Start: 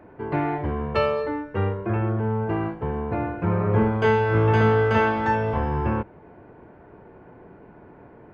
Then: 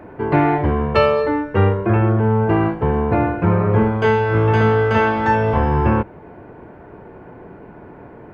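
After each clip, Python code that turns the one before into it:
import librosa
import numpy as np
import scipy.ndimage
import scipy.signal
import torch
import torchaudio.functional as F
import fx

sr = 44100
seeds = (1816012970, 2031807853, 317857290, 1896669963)

y = fx.rider(x, sr, range_db=3, speed_s=0.5)
y = F.gain(torch.from_numpy(y), 6.5).numpy()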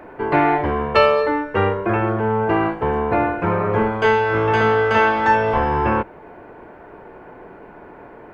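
y = fx.peak_eq(x, sr, hz=110.0, db=-12.0, octaves=2.9)
y = F.gain(torch.from_numpy(y), 3.0).numpy()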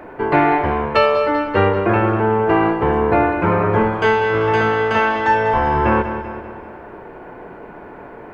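y = fx.echo_feedback(x, sr, ms=194, feedback_pct=51, wet_db=-11.0)
y = fx.rider(y, sr, range_db=10, speed_s=0.5)
y = F.gain(torch.from_numpy(y), 1.5).numpy()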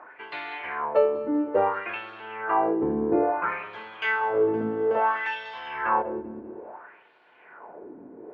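y = fx.wah_lfo(x, sr, hz=0.59, low_hz=260.0, high_hz=3900.0, q=3.2)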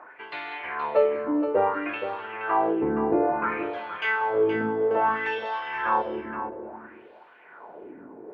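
y = x + 10.0 ** (-9.5 / 20.0) * np.pad(x, (int(472 * sr / 1000.0), 0))[:len(x)]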